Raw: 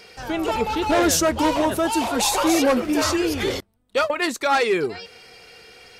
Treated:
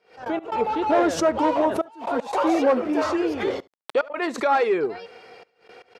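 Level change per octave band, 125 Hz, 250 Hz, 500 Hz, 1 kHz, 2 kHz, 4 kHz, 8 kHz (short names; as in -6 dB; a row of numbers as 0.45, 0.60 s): -10.0, -2.5, 0.0, -0.5, -5.0, -11.5, -15.5 dB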